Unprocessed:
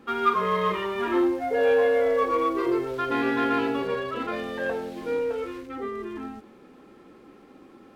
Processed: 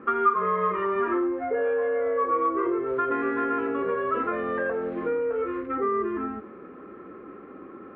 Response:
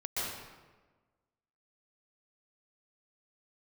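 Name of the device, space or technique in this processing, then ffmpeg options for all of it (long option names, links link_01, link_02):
bass amplifier: -af "acompressor=threshold=-32dB:ratio=5,highpass=65,equalizer=frequency=130:width_type=q:width=4:gain=-7,equalizer=frequency=240:width_type=q:width=4:gain=-3,equalizer=frequency=400:width_type=q:width=4:gain=3,equalizer=frequency=840:width_type=q:width=4:gain=-8,equalizer=frequency=1200:width_type=q:width=4:gain=8,lowpass=frequency=2000:width=0.5412,lowpass=frequency=2000:width=1.3066,volume=7dB"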